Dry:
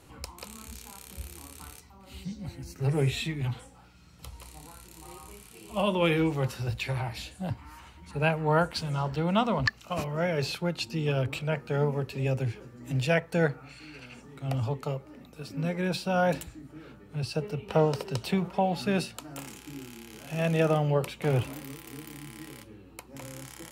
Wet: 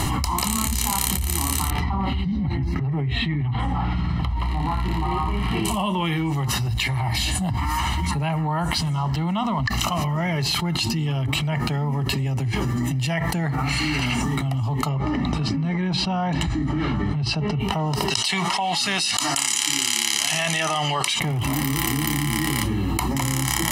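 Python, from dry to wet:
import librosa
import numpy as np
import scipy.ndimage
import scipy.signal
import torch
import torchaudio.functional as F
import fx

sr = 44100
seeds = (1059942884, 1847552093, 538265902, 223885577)

y = fx.air_absorb(x, sr, metres=410.0, at=(1.7, 5.65))
y = fx.air_absorb(y, sr, metres=130.0, at=(14.89, 17.6))
y = fx.weighting(y, sr, curve='ITU-R 468', at=(18.1, 21.2))
y = y + 0.81 * np.pad(y, (int(1.0 * sr / 1000.0), 0))[:len(y)]
y = fx.env_flatten(y, sr, amount_pct=100)
y = y * librosa.db_to_amplitude(-4.0)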